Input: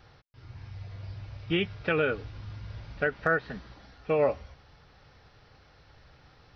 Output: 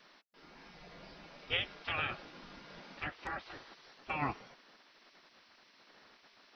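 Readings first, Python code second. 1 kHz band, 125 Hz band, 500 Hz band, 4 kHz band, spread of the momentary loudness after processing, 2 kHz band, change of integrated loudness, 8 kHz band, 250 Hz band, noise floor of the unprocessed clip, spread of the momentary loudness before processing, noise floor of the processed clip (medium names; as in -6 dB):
-5.0 dB, -12.5 dB, -19.5 dB, -0.5 dB, 20 LU, -8.0 dB, -9.0 dB, no reading, -13.0 dB, -59 dBFS, 17 LU, -65 dBFS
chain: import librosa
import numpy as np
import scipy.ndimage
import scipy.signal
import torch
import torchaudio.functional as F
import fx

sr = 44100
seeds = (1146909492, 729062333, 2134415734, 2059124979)

y = fx.spec_gate(x, sr, threshold_db=-15, keep='weak')
y = y * librosa.db_to_amplitude(1.0)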